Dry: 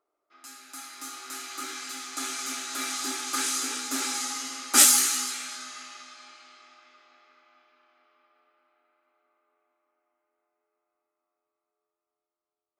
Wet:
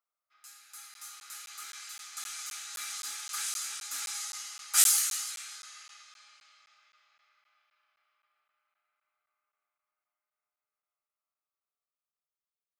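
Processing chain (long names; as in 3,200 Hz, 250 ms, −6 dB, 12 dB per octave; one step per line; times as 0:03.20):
high-pass filter 1,300 Hz 12 dB per octave
high-shelf EQ 10,000 Hz +6.5 dB
regular buffer underruns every 0.26 s, samples 512, zero, from 0:00.94
level −7.5 dB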